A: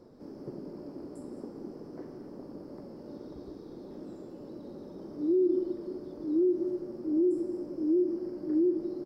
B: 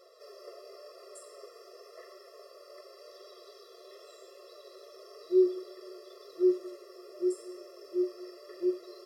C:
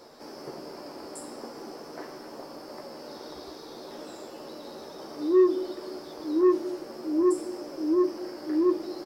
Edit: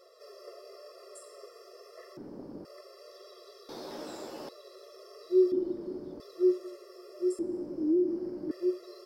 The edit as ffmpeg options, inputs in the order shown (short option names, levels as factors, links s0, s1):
-filter_complex "[0:a]asplit=3[s0][s1][s2];[1:a]asplit=5[s3][s4][s5][s6][s7];[s3]atrim=end=2.172[s8];[s0]atrim=start=2.168:end=2.652[s9];[s4]atrim=start=2.648:end=3.692[s10];[2:a]atrim=start=3.688:end=4.492[s11];[s5]atrim=start=4.488:end=5.522[s12];[s1]atrim=start=5.518:end=6.202[s13];[s6]atrim=start=6.198:end=7.392[s14];[s2]atrim=start=7.388:end=8.512[s15];[s7]atrim=start=8.508[s16];[s8][s9]acrossfade=d=0.004:c1=hsin:c2=hsin[s17];[s17][s10]acrossfade=d=0.004:c1=hsin:c2=hsin[s18];[s18][s11]acrossfade=d=0.004:c1=hsin:c2=hsin[s19];[s19][s12]acrossfade=d=0.004:c1=hsin:c2=hsin[s20];[s20][s13]acrossfade=d=0.004:c1=hsin:c2=hsin[s21];[s21][s14]acrossfade=d=0.004:c1=hsin:c2=hsin[s22];[s22][s15]acrossfade=d=0.004:c1=hsin:c2=hsin[s23];[s23][s16]acrossfade=d=0.004:c1=hsin:c2=hsin"